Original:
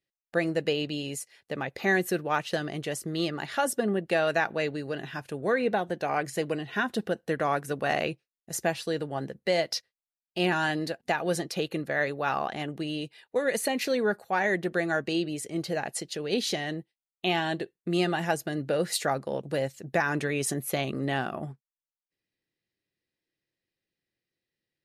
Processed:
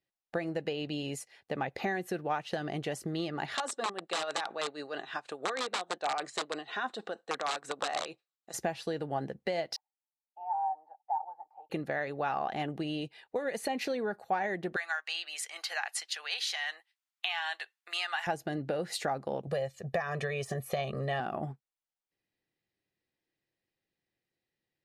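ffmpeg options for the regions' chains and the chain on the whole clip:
-filter_complex "[0:a]asettb=1/sr,asplit=3[a][b][c];[a]atrim=end=3.554[d];[b]atrim=start=3.55:end=8.54,asetpts=PTS-STARTPTS,afade=t=in:d=0.004:c=qsin,afade=t=out:st=4.986:d=0.004:c=qsin,tremolo=f=6.3:d=0.66,aeval=exprs='(mod(13.3*val(0)+1,2)-1)/13.3':c=same,highpass=380,equalizer=f=1.2k:t=q:w=4:g=8,equalizer=f=3.9k:t=q:w=4:g=9,equalizer=f=7.8k:t=q:w=4:g=10,lowpass=f=9k:w=0.5412,lowpass=f=9k:w=1.3066[e];[c]atrim=start=8.536[f];[d][e]acrossfade=d=0.004:c1=hsin:c2=qsin[g];[g][f]acrossfade=d=0.004:c1=qsin:c2=hsin,asettb=1/sr,asplit=3[h][i][j];[h]atrim=end=9.764[k];[i]atrim=start=9.76:end=11.7,asetpts=PTS-STARTPTS,afade=t=in:d=0.004:c=qsin,afade=t=out:st=1.936:d=0.004:c=qsin,asuperpass=centerf=850:order=4:qfactor=6.4,aecho=1:1:6.7:0.53,atrim=end_sample=85554[l];[j]atrim=start=11.696[m];[k][l]acrossfade=d=0.004:c1=hsin:c2=qsin[n];[n][m]acrossfade=d=0.004:c1=qsin:c2=hsin,asettb=1/sr,asplit=3[o][p][q];[o]atrim=end=14.764[r];[p]atrim=start=14.76:end=18.27,asetpts=PTS-STARTPTS,afade=t=in:d=0.004:c=qsin,afade=t=out:st=3.506:d=0.004:c=qsin,highpass=f=1.1k:w=0.5412,highpass=f=1.1k:w=1.3066,acontrast=78[s];[q]atrim=start=18.266[t];[r][s]acrossfade=d=0.004:c1=hsin:c2=qsin[u];[u][t]acrossfade=d=0.004:c1=qsin:c2=hsin,asettb=1/sr,asplit=3[v][w][x];[v]atrim=end=19.474[y];[w]atrim=start=19.47:end=21.2,asetpts=PTS-STARTPTS,afade=t=in:d=0.004:c=qsin,afade=t=out:st=1.726:d=0.004:c=qsin,deesser=0.65,aecho=1:1:1.7:0.94,atrim=end_sample=76293[z];[x]atrim=start=21.196[aa];[y][z]acrossfade=d=0.004:c1=hsin:c2=qsin[ab];[ab][aa]acrossfade=d=0.004:c1=qsin:c2=hsin,highshelf=f=6.9k:g=-10.5,acompressor=threshold=-31dB:ratio=6,equalizer=f=780:t=o:w=0.39:g=6.5"

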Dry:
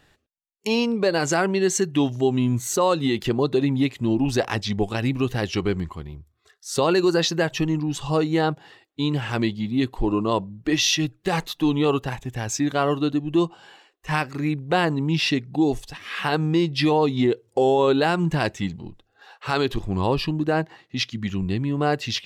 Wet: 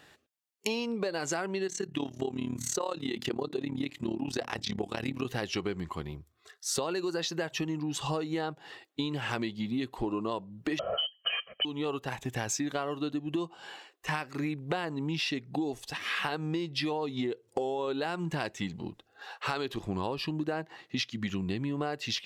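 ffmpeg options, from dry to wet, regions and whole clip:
-filter_complex "[0:a]asettb=1/sr,asplit=3[a][b][c];[a]atrim=end=1.674[d];[b]atrim=start=1.67:end=5.25,asetpts=PTS-STARTPTS,afade=t=in:d=0.004:c=qsin,afade=t=out:st=3.576:d=0.004:c=qsin,bandreject=f=60:t=h:w=6,bandreject=f=120:t=h:w=6,bandreject=f=180:t=h:w=6,bandreject=f=240:t=h:w=6,bandreject=f=300:t=h:w=6,tremolo=f=36:d=0.857,acrossover=split=8000[e][f];[f]acompressor=threshold=-46dB:ratio=4:attack=1:release=60[g];[e][g]amix=inputs=2:normalize=0[h];[c]atrim=start=5.246[i];[d][h]acrossfade=d=0.004:c1=hsin:c2=qsin[j];[j][i]acrossfade=d=0.004:c1=qsin:c2=hsin,asettb=1/sr,asplit=3[k][l][m];[k]atrim=end=10.794[n];[l]atrim=start=10.79:end=11.65,asetpts=PTS-STARTPTS,afade=t=in:d=0.004:c=qsin,afade=t=out:st=0.856:d=0.004:c=qsin,lowpass=f=2.8k:t=q:w=0.5098,lowpass=f=2.8k:t=q:w=0.6013,lowpass=f=2.8k:t=q:w=0.9,lowpass=f=2.8k:t=q:w=2.563,afreqshift=-3300,aecho=1:1:1.7:0.95,atrim=end_sample=37926[o];[m]atrim=start=11.646[p];[n][o]acrossfade=d=0.004:c1=hsin:c2=qsin[q];[q][p]acrossfade=d=0.004:c1=qsin:c2=hsin,highpass=f=240:p=1,acompressor=threshold=-32dB:ratio=12,volume=3dB"

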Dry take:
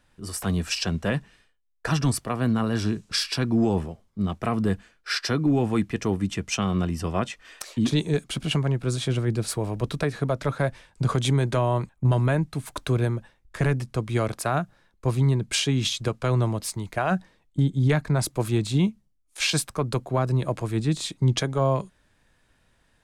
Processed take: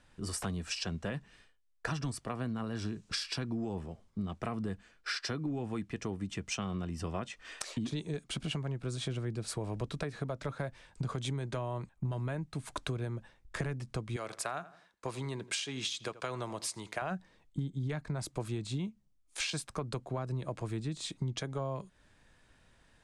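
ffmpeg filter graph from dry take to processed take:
-filter_complex "[0:a]asettb=1/sr,asplit=3[a][b][c];[a]atrim=end=14.164[d];[b]atrim=start=14.16:end=17.02,asetpts=PTS-STARTPTS,afade=t=in:d=0.004:c=qsin,afade=t=out:st=2.856:d=0.004:c=qsin,highpass=f=750:p=1,asplit=2[e][f];[f]adelay=83,lowpass=f=2.5k:p=1,volume=-18.5dB,asplit=2[g][h];[h]adelay=83,lowpass=f=2.5k:p=1,volume=0.31,asplit=2[i][j];[j]adelay=83,lowpass=f=2.5k:p=1,volume=0.31[k];[e][g][i][k]amix=inputs=4:normalize=0,atrim=end_sample=126126[l];[c]atrim=start=17.016[m];[d][l]acrossfade=d=0.004:c1=hsin:c2=qsin[n];[n][m]acrossfade=d=0.004:c1=qsin:c2=hsin,lowpass=f=9.9k:w=0.5412,lowpass=f=9.9k:w=1.3066,acompressor=threshold=-34dB:ratio=6"

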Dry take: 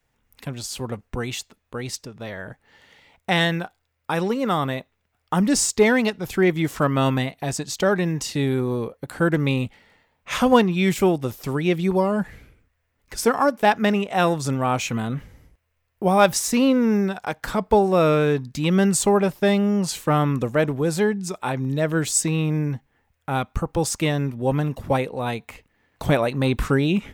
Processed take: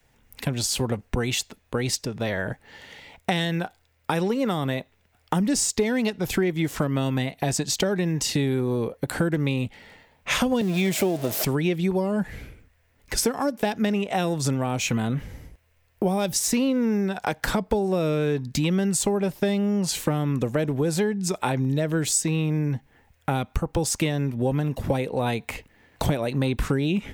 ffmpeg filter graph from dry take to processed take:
-filter_complex "[0:a]asettb=1/sr,asplit=3[a][b][c];[a]atrim=end=10.614[d];[b]atrim=start=10.61:end=11.45,asetpts=PTS-STARTPTS,afade=t=in:d=0.004:c=qsin,afade=t=out:st=0.836:d=0.004:c=qsin,aeval=exprs='val(0)+0.5*0.0562*sgn(val(0))':c=same,highpass=160,equalizer=f=640:t=o:w=0.23:g=13.5[e];[c]atrim=start=11.446[f];[d][e]acrossfade=d=0.004:c1=hsin:c2=qsin[g];[g][f]acrossfade=d=0.004:c1=qsin:c2=hsin,acrossover=split=480|3000[h][i][j];[i]acompressor=threshold=-25dB:ratio=6[k];[h][k][j]amix=inputs=3:normalize=0,equalizer=f=1.2k:t=o:w=0.47:g=-4.5,acompressor=threshold=-30dB:ratio=5,volume=8.5dB"

